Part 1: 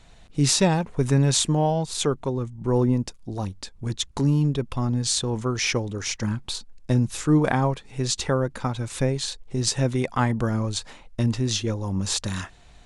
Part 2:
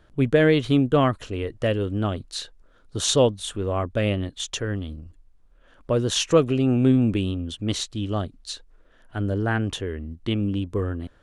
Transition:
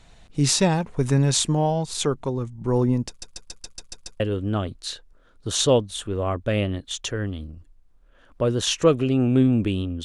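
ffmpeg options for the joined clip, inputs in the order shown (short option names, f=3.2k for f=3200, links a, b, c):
-filter_complex "[0:a]apad=whole_dur=10.04,atrim=end=10.04,asplit=8[a][b][c][d][e][f][g][h];[a]atrim=end=3.222[i];[b]atrim=start=3.078:end=3.222[j];[c]atrim=start=3.078:end=3.222[k];[d]atrim=start=3.078:end=3.222[l];[e]atrim=start=3.078:end=3.222[m];[f]atrim=start=3.078:end=3.222[n];[g]atrim=start=3.078:end=3.222[o];[h]atrim=start=3.078:end=3.222[p];[1:a]atrim=start=1.688:end=7.53[q];[i][j]acrossfade=d=0.004:c1=hsin:c2=hsin[r];[r][k]acrossfade=d=0.004:c1=hsin:c2=hsin[s];[s][l]acrossfade=d=0.004:c1=hsin:c2=hsin[t];[t][m]acrossfade=d=0.004:c1=hsin:c2=hsin[u];[u][n]acrossfade=d=0.004:c1=hsin:c2=hsin[v];[v][o]acrossfade=d=0.004:c1=hsin:c2=hsin[w];[w][p]acrossfade=d=0.004:c1=hsin:c2=hsin[x];[x][q]acrossfade=d=0.004:c1=hsin:c2=hsin"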